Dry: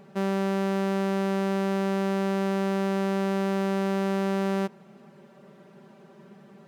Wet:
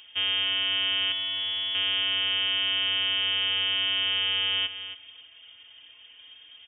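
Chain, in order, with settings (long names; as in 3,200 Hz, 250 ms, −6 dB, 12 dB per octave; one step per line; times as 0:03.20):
stylus tracing distortion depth 0.17 ms
0:01.12–0:01.75: gain into a clipping stage and back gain 28.5 dB
repeating echo 275 ms, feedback 18%, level −11.5 dB
voice inversion scrambler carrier 3,400 Hz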